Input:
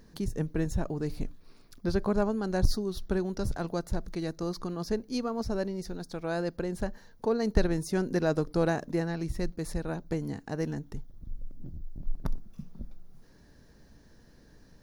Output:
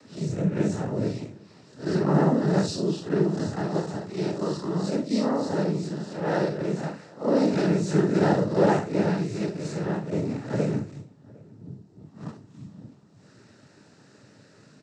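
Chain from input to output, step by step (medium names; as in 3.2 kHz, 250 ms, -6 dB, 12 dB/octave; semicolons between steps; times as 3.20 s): spectral blur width 112 ms; noise-vocoded speech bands 12; echo from a far wall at 130 m, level -25 dB; trim +9 dB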